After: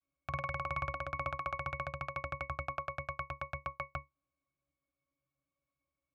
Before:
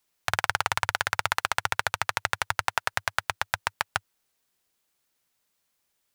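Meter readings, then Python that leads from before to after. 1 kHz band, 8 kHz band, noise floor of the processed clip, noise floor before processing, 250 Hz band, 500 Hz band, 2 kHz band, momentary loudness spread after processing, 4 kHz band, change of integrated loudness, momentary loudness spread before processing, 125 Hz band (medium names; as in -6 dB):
-10.0 dB, under -30 dB, under -85 dBFS, -76 dBFS, -1.0 dB, -4.5 dB, -14.5 dB, 5 LU, -25.0 dB, -11.5 dB, 4 LU, -2.0 dB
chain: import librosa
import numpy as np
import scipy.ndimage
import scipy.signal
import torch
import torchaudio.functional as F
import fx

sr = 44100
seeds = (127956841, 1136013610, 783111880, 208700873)

y = fx.vibrato(x, sr, rate_hz=0.66, depth_cents=74.0)
y = fx.octave_resonator(y, sr, note='C#', decay_s=0.17)
y = y * 10.0 ** (7.0 / 20.0)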